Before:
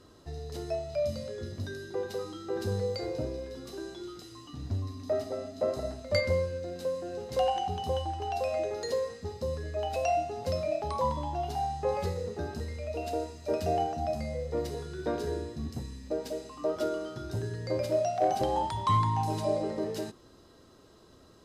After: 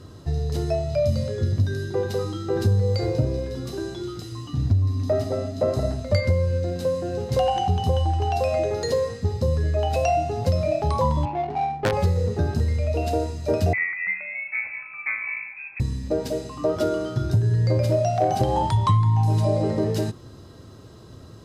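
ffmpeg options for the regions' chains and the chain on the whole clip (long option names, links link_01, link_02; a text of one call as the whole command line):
ffmpeg -i in.wav -filter_complex "[0:a]asettb=1/sr,asplit=3[link_01][link_02][link_03];[link_01]atrim=end=11.254[link_04];[link_02]atrim=start=11.25:end=11.93,asetpts=PTS-STARTPTS,afade=type=in:duration=0.004:curve=qsin,afade=type=out:start_time=0.676:duration=0.004:curve=qsin,highpass=260,aeval=exprs='(mod(11.9*val(0)+1,2)-1)/11.9':channel_layout=same,adynamicsmooth=sensitivity=3:basefreq=610[link_05];[link_03]atrim=start=11.926[link_06];[link_04][link_05]acrossfade=duration=0.004:curve1=hsin:curve2=qsin[link_07];[link_07][link_06]acrossfade=duration=0.004:curve1=qsin:curve2=hsin,asettb=1/sr,asplit=3[link_08][link_09][link_10];[link_08]atrim=end=13.734[link_11];[link_09]atrim=start=13.73:end=15.8,asetpts=PTS-STARTPTS,afade=type=in:duration=0.004:curve=qsin,afade=type=out:start_time=2.066:duration=0.004:curve=qsin,aemphasis=mode=production:type=riaa,adynamicsmooth=sensitivity=1:basefreq=1700,lowpass=frequency=2300:width_type=q:width=0.5098,lowpass=frequency=2300:width_type=q:width=0.6013,lowpass=frequency=2300:width_type=q:width=0.9,lowpass=frequency=2300:width_type=q:width=2.563,afreqshift=-2700[link_12];[link_10]atrim=start=15.796[link_13];[link_11][link_12]acrossfade=duration=0.004:curve1=hsin:curve2=qsin[link_14];[link_14][link_13]acrossfade=duration=0.004:curve1=qsin:curve2=hsin,equalizer=frequency=110:width=1:gain=14,acompressor=threshold=-24dB:ratio=6,volume=7.5dB" out.wav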